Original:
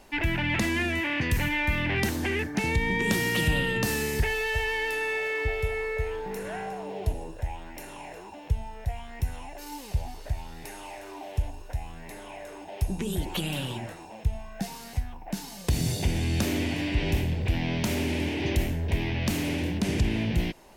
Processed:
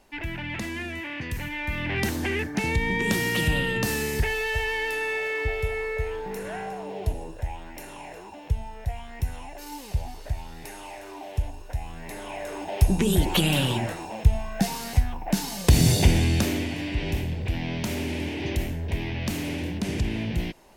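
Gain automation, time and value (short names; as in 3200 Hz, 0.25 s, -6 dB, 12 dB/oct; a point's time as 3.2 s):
1.49 s -6 dB
2.08 s +1 dB
11.66 s +1 dB
12.64 s +8.5 dB
16.05 s +8.5 dB
16.7 s -1.5 dB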